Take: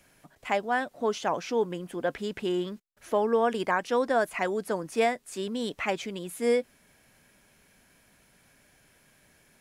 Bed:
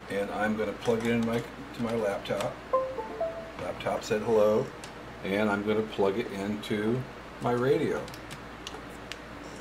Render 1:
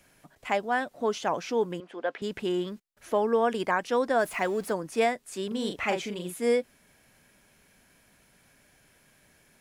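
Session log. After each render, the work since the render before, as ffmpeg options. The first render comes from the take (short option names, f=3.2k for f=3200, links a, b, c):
-filter_complex "[0:a]asettb=1/sr,asplit=3[a][b][c];[a]atrim=end=1.804[d];[b]atrim=start=1.8:end=2.22,asetpts=PTS-STARTPTS,afade=t=in:d=0.004:c=qsin,afade=t=out:st=0.416:d=0.004:c=qsin,highpass=430,lowpass=3.8k[e];[c]atrim=start=2.216[f];[d][e]acrossfade=d=0.004:c1=hsin:c2=qsin[g];[g][f]acrossfade=d=0.004:c1=qsin:c2=hsin,asettb=1/sr,asplit=3[h][i][j];[h]atrim=end=4.194[k];[i]atrim=start=4.19:end=4.73,asetpts=PTS-STARTPTS,afade=t=in:d=0.004:c=qsin,afade=t=out:st=0.536:d=0.004:c=qsin,aeval=exprs='val(0)+0.5*0.0075*sgn(val(0))':c=same[l];[j]atrim=start=4.726[m];[k][l]acrossfade=d=0.004:c1=hsin:c2=qsin[n];[n][m]acrossfade=d=0.004:c1=qsin:c2=hsin,asettb=1/sr,asplit=3[o][p][q];[o]atrim=end=5.474[r];[p]atrim=start=5.47:end=6.34,asetpts=PTS-STARTPTS,afade=t=in:d=0.004:c=qsin,afade=t=out:st=0.866:d=0.004:c=qsin,asplit=2[s][t];[t]adelay=39,volume=-5dB[u];[s][u]amix=inputs=2:normalize=0,atrim=end_sample=38367[v];[q]atrim=start=6.336[w];[r][v]acrossfade=d=0.004:c1=hsin:c2=qsin[x];[x][w]acrossfade=d=0.004:c1=qsin:c2=hsin"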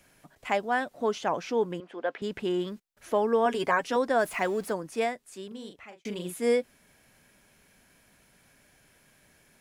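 -filter_complex "[0:a]asettb=1/sr,asplit=3[a][b][c];[a]atrim=end=1.114[d];[b]atrim=start=1.11:end=2.6,asetpts=PTS-STARTPTS,afade=t=in:d=0.004:c=qsin,afade=t=out:st=1.486:d=0.004:c=qsin,highshelf=f=4.4k:g=-4.5[e];[c]atrim=start=2.596[f];[d][e]acrossfade=d=0.004:c1=hsin:c2=qsin[g];[g][f]acrossfade=d=0.004:c1=qsin:c2=hsin,asettb=1/sr,asplit=3[h][i][j];[h]atrim=end=3.454[k];[i]atrim=start=3.45:end=3.96,asetpts=PTS-STARTPTS,afade=t=in:d=0.004:c=qsin,afade=t=out:st=0.506:d=0.004:c=qsin,aecho=1:1:7.3:0.63,atrim=end_sample=22491[l];[j]atrim=start=3.956[m];[k][l]acrossfade=d=0.004:c1=hsin:c2=qsin[n];[n][m]acrossfade=d=0.004:c1=qsin:c2=hsin,asplit=2[o][p];[o]atrim=end=6.05,asetpts=PTS-STARTPTS,afade=t=out:st=4.5:d=1.55[q];[p]atrim=start=6.05,asetpts=PTS-STARTPTS,afade=t=in:d=0.004:c=hsin[r];[q][r]concat=n=2:v=0:a=1"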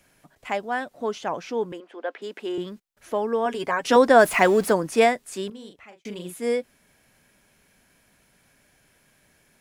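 -filter_complex "[0:a]asettb=1/sr,asplit=3[a][b][c];[a]atrim=end=1.724[d];[b]atrim=start=1.72:end=2.58,asetpts=PTS-STARTPTS,afade=t=in:d=0.004:c=qsin,afade=t=out:st=0.856:d=0.004:c=qsin,highpass=f=270:w=0.5412,highpass=f=270:w=1.3066[e];[c]atrim=start=2.576[f];[d][e]acrossfade=d=0.004:c1=hsin:c2=qsin[g];[g][f]acrossfade=d=0.004:c1=qsin:c2=hsin,asplit=3[h][i][j];[h]atrim=end=3.852[k];[i]atrim=start=3.848:end=5.502,asetpts=PTS-STARTPTS,volume=10.5dB[l];[j]atrim=start=5.498[m];[k][l]acrossfade=d=0.004:c1=hsin:c2=hsin[n];[n][m]acrossfade=d=0.004:c1=hsin:c2=hsin"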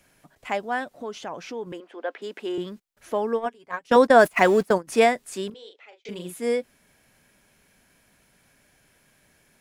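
-filter_complex "[0:a]asettb=1/sr,asplit=3[a][b][c];[a]atrim=end=0.844[d];[b]atrim=start=0.84:end=1.67,asetpts=PTS-STARTPTS,afade=t=in:d=0.004:c=qsin,afade=t=out:st=0.826:d=0.004:c=qsin,acompressor=threshold=-34dB:ratio=2:attack=3.2:release=140:knee=1:detection=peak[e];[c]atrim=start=1.666[f];[d][e]acrossfade=d=0.004:c1=hsin:c2=qsin[g];[g][f]acrossfade=d=0.004:c1=qsin:c2=hsin,asplit=3[h][i][j];[h]afade=t=out:st=3.35:d=0.02[k];[i]agate=range=-23dB:threshold=-23dB:ratio=16:release=100:detection=peak,afade=t=in:st=3.35:d=0.02,afade=t=out:st=4.87:d=0.02[l];[j]afade=t=in:st=4.87:d=0.02[m];[k][l][m]amix=inputs=3:normalize=0,asettb=1/sr,asplit=3[n][o][p];[n]atrim=end=5.544[q];[o]atrim=start=5.54:end=6.09,asetpts=PTS-STARTPTS,afade=t=in:d=0.004:c=qsin,afade=t=out:st=0.546:d=0.004:c=qsin,highpass=f=440:w=0.5412,highpass=f=440:w=1.3066,equalizer=f=450:t=q:w=4:g=5,equalizer=f=670:t=q:w=4:g=-4,equalizer=f=1.1k:t=q:w=4:g=-10,equalizer=f=1.7k:t=q:w=4:g=-4,equalizer=f=3.6k:t=q:w=4:g=5,equalizer=f=6k:t=q:w=4:g=-4,lowpass=f=6.3k:w=0.5412,lowpass=f=6.3k:w=1.3066[r];[p]atrim=start=6.086[s];[q][r]acrossfade=d=0.004:c1=hsin:c2=qsin[t];[t][s]acrossfade=d=0.004:c1=qsin:c2=hsin"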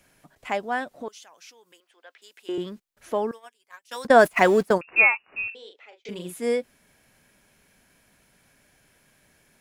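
-filter_complex "[0:a]asettb=1/sr,asplit=3[a][b][c];[a]atrim=end=1.084[d];[b]atrim=start=1.08:end=2.49,asetpts=PTS-STARTPTS,afade=t=in:d=0.004:c=qsin,afade=t=out:st=1.406:d=0.004:c=qsin,aderivative[e];[c]atrim=start=2.486[f];[d][e]acrossfade=d=0.004:c1=hsin:c2=qsin[g];[g][f]acrossfade=d=0.004:c1=qsin:c2=hsin,asettb=1/sr,asplit=3[h][i][j];[h]atrim=end=3.314[k];[i]atrim=start=3.31:end=4.05,asetpts=PTS-STARTPTS,afade=t=in:d=0.004:c=qsin,afade=t=out:st=0.736:d=0.004:c=qsin,aderivative[l];[j]atrim=start=4.046[m];[k][l]acrossfade=d=0.004:c1=hsin:c2=qsin[n];[n][m]acrossfade=d=0.004:c1=qsin:c2=hsin,asettb=1/sr,asplit=3[o][p][q];[o]atrim=end=4.814[r];[p]atrim=start=4.81:end=5.55,asetpts=PTS-STARTPTS,afade=t=in:d=0.004:c=qsin,afade=t=out:st=0.736:d=0.004:c=qsin,lowpass=f=2.5k:t=q:w=0.5098,lowpass=f=2.5k:t=q:w=0.6013,lowpass=f=2.5k:t=q:w=0.9,lowpass=f=2.5k:t=q:w=2.563,afreqshift=-2900[s];[q]atrim=start=5.546[t];[r][s]acrossfade=d=0.004:c1=hsin:c2=qsin[u];[u][t]acrossfade=d=0.004:c1=qsin:c2=hsin"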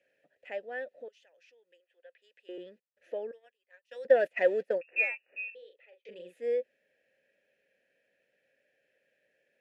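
-filter_complex "[0:a]asoftclip=type=tanh:threshold=-6.5dB,asplit=3[a][b][c];[a]bandpass=f=530:t=q:w=8,volume=0dB[d];[b]bandpass=f=1.84k:t=q:w=8,volume=-6dB[e];[c]bandpass=f=2.48k:t=q:w=8,volume=-9dB[f];[d][e][f]amix=inputs=3:normalize=0"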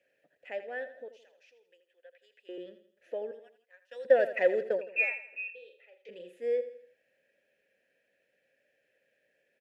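-af "aecho=1:1:82|164|246|328:0.237|0.0996|0.0418|0.0176"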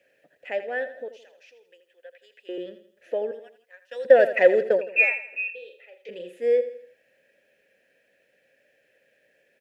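-af "volume=9dB,alimiter=limit=-3dB:level=0:latency=1"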